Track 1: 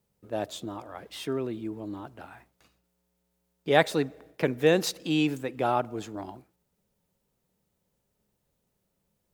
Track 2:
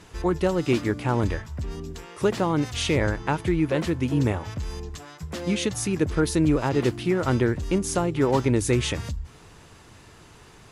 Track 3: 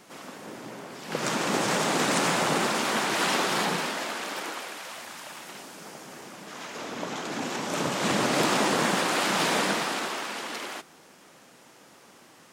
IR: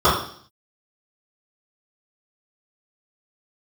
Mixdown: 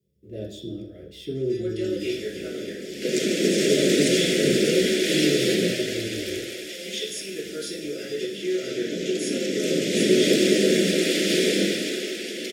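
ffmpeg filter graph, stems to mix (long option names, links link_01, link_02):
-filter_complex "[0:a]deesser=0.8,asoftclip=type=tanh:threshold=-23dB,volume=-9dB,asplit=2[link_01][link_02];[link_02]volume=-12dB[link_03];[1:a]highpass=1000,adelay=1350,volume=-9.5dB,asplit=2[link_04][link_05];[link_05]volume=-7.5dB[link_06];[2:a]highpass=frequency=190:width=0.5412,highpass=frequency=190:width=1.3066,adelay=1900,volume=1.5dB,asplit=2[link_07][link_08];[link_08]volume=-19.5dB[link_09];[3:a]atrim=start_sample=2205[link_10];[link_03][link_06][link_09]amix=inputs=3:normalize=0[link_11];[link_11][link_10]afir=irnorm=-1:irlink=0[link_12];[link_01][link_04][link_07][link_12]amix=inputs=4:normalize=0,asuperstop=centerf=990:order=8:qfactor=0.74"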